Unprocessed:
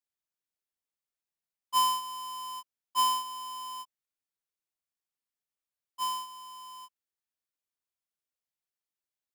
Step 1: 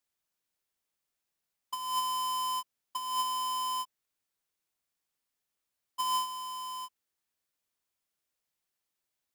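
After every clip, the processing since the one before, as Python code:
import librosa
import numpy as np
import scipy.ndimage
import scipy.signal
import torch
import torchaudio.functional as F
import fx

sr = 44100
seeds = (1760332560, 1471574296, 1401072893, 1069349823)

y = fx.over_compress(x, sr, threshold_db=-34.0, ratio=-1.0)
y = F.gain(torch.from_numpy(y), 3.0).numpy()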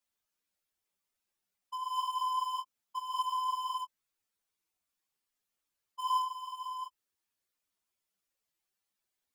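y = fx.spec_expand(x, sr, power=1.6)
y = fx.ensemble(y, sr)
y = F.gain(torch.from_numpy(y), 2.0).numpy()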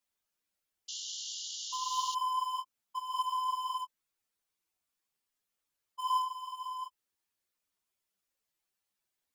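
y = fx.spec_paint(x, sr, seeds[0], shape='noise', start_s=0.88, length_s=1.27, low_hz=2800.0, high_hz=7300.0, level_db=-41.0)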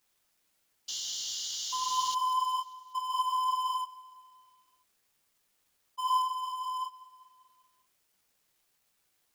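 y = fx.law_mismatch(x, sr, coded='mu')
y = fx.echo_feedback(y, sr, ms=196, feedback_pct=60, wet_db=-21.0)
y = F.gain(torch.from_numpy(y), 1.5).numpy()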